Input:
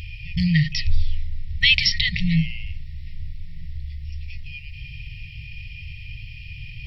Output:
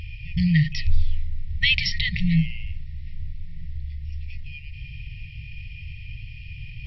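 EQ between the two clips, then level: treble shelf 3.4 kHz -10 dB; 0.0 dB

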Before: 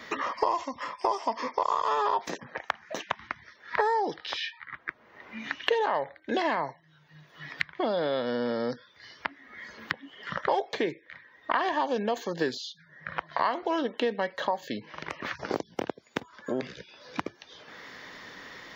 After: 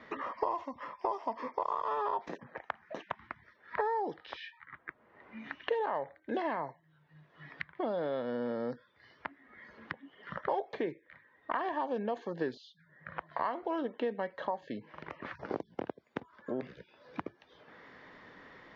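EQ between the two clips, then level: distance through air 94 m; treble shelf 2.7 kHz -10 dB; peaking EQ 11 kHz -4.5 dB 2.3 oct; -5.0 dB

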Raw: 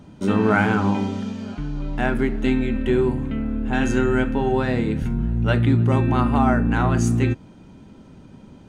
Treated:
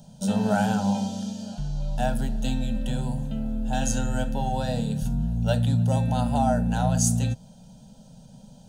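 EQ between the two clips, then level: treble shelf 3.8 kHz +9.5 dB; static phaser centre 310 Hz, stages 6; static phaser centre 890 Hz, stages 4; +2.5 dB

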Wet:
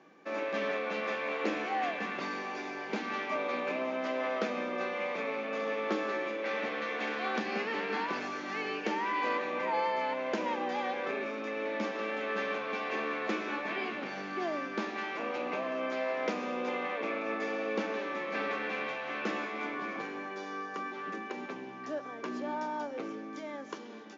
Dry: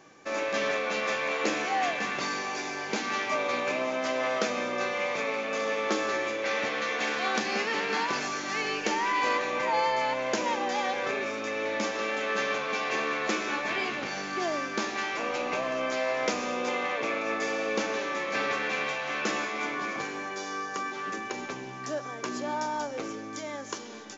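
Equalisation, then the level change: steep high-pass 170 Hz 36 dB/octave; low-pass 3.4 kHz 12 dB/octave; bass shelf 380 Hz +5.5 dB; -5.5 dB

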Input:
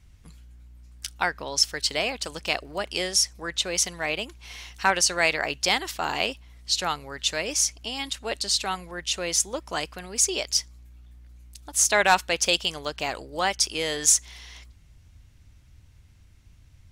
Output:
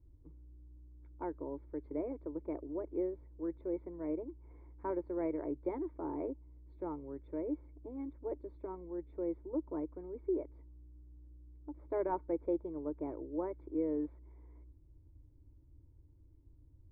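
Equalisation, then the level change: cascade formant filter u; static phaser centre 790 Hz, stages 6; +9.0 dB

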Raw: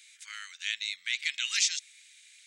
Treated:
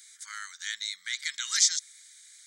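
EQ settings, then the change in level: static phaser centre 1.1 kHz, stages 4; +7.5 dB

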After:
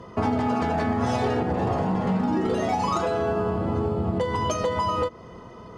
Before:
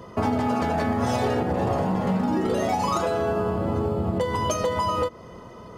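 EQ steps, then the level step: distance through air 50 m; band-stop 570 Hz, Q 12; 0.0 dB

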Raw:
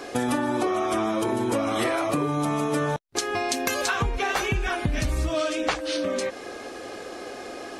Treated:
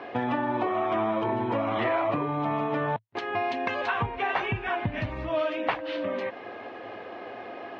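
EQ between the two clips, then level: cabinet simulation 100–3200 Hz, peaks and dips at 110 Hz +9 dB, 210 Hz +3 dB, 670 Hz +6 dB, 960 Hz +9 dB, 1.9 kHz +5 dB, 2.8 kHz +3 dB; -5.5 dB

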